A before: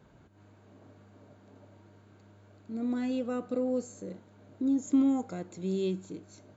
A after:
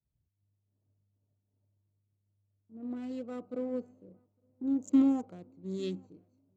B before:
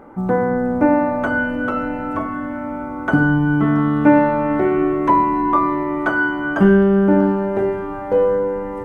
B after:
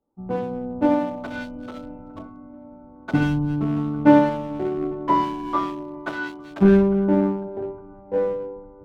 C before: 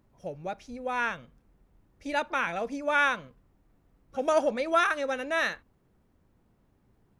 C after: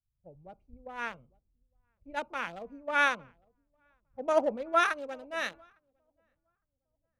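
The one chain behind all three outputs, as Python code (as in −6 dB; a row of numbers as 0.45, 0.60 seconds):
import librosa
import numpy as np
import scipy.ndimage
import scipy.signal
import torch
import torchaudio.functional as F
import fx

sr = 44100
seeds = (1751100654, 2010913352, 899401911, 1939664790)

y = fx.wiener(x, sr, points=25)
y = fx.echo_filtered(y, sr, ms=857, feedback_pct=57, hz=1800.0, wet_db=-20.0)
y = fx.band_widen(y, sr, depth_pct=100)
y = y * 10.0 ** (-6.5 / 20.0)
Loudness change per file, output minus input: −1.5, −4.5, −2.5 LU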